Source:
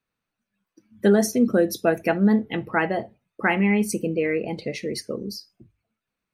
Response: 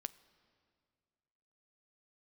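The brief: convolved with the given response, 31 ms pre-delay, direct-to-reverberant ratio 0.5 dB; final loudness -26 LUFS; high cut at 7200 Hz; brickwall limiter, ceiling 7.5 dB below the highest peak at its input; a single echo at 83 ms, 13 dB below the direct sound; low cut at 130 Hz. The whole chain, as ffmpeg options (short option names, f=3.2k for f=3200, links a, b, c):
-filter_complex "[0:a]highpass=130,lowpass=7.2k,alimiter=limit=-15dB:level=0:latency=1,aecho=1:1:83:0.224,asplit=2[a][b];[1:a]atrim=start_sample=2205,adelay=31[c];[b][c]afir=irnorm=-1:irlink=0,volume=2.5dB[d];[a][d]amix=inputs=2:normalize=0,volume=-2dB"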